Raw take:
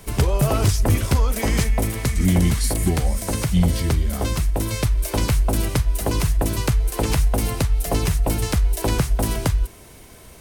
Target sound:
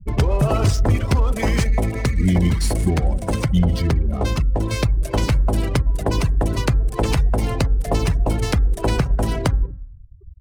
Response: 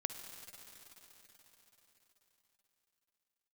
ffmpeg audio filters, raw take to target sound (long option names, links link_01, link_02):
-filter_complex "[0:a]asplit=2[link_01][link_02];[1:a]atrim=start_sample=2205,afade=type=out:start_time=0.33:duration=0.01,atrim=end_sample=14994[link_03];[link_02][link_03]afir=irnorm=-1:irlink=0,volume=1.5dB[link_04];[link_01][link_04]amix=inputs=2:normalize=0,afftfilt=real='re*gte(hypot(re,im),0.0708)':imag='im*gte(hypot(re,im),0.0708)':win_size=1024:overlap=0.75,adynamicsmooth=sensitivity=7:basefreq=950,bandreject=frequency=268.8:width_type=h:width=4,bandreject=frequency=537.6:width_type=h:width=4,bandreject=frequency=806.4:width_type=h:width=4,bandreject=frequency=1075.2:width_type=h:width=4,bandreject=frequency=1344:width_type=h:width=4,bandreject=frequency=1612.8:width_type=h:width=4,bandreject=frequency=1881.6:width_type=h:width=4,acompressor=threshold=-27dB:ratio=1.5,volume=1.5dB"